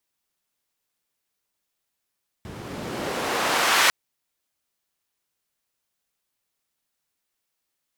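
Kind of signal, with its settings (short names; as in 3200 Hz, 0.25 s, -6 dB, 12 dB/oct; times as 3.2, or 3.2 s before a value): swept filtered noise white, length 1.45 s bandpass, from 110 Hz, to 1700 Hz, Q 0.77, exponential, gain ramp +9.5 dB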